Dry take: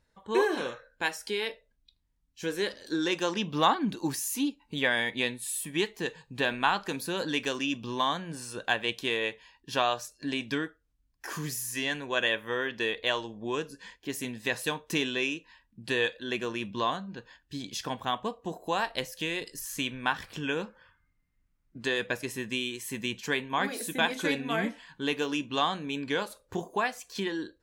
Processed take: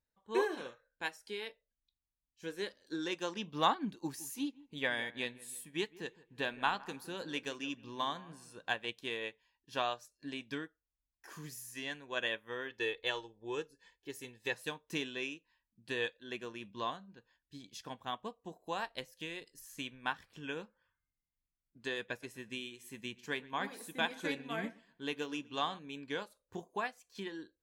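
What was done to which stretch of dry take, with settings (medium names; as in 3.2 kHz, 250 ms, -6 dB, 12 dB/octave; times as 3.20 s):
4.02–8.85 s: feedback echo behind a low-pass 163 ms, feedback 34%, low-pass 2.1 kHz, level -14 dB
12.70–14.54 s: comb 2.3 ms, depth 56%
21.96–25.79 s: filtered feedback delay 122 ms, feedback 37%, low-pass 3.9 kHz, level -16 dB
whole clip: upward expansion 1.5:1, over -48 dBFS; trim -5 dB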